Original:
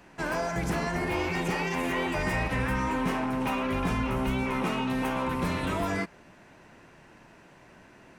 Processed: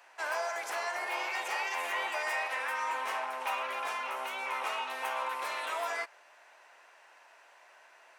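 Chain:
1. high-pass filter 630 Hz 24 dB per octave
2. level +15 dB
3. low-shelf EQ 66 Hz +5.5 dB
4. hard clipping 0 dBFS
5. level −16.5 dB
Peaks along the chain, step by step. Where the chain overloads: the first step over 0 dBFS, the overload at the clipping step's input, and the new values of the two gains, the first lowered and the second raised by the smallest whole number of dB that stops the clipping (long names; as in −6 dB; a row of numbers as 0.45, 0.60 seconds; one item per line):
−19.5, −4.5, −4.5, −4.5, −21.0 dBFS
no step passes full scale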